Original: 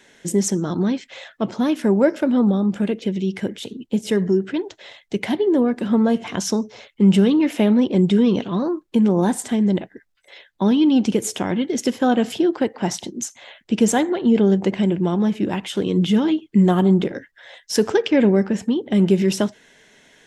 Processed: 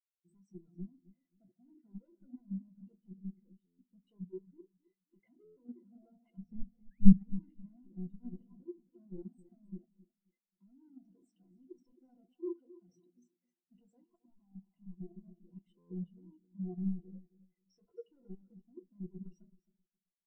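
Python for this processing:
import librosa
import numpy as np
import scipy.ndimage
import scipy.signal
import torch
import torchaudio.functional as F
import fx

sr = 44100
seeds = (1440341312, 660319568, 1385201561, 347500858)

y = np.clip(x, -10.0 ** (-23.0 / 20.0), 10.0 ** (-23.0 / 20.0))
y = fx.ripple_eq(y, sr, per_octave=2.0, db=9)
y = fx.room_shoebox(y, sr, seeds[0], volume_m3=140.0, walls='furnished', distance_m=0.74)
y = fx.spec_paint(y, sr, seeds[1], shape='rise', start_s=6.9, length_s=0.25, low_hz=1500.0, high_hz=5900.0, level_db=-28.0)
y = fx.level_steps(y, sr, step_db=10)
y = fx.riaa(y, sr, side='playback', at=(6.37, 7.17), fade=0.02)
y = fx.fixed_phaser(y, sr, hz=1600.0, stages=6, at=(14.04, 14.98))
y = fx.echo_feedback(y, sr, ms=266, feedback_pct=50, wet_db=-7.5)
y = fx.buffer_glitch(y, sr, at_s=(3.66, 5.44, 15.78), block=512, repeats=10)
y = fx.spectral_expand(y, sr, expansion=2.5)
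y = y * 10.0 ** (-2.0 / 20.0)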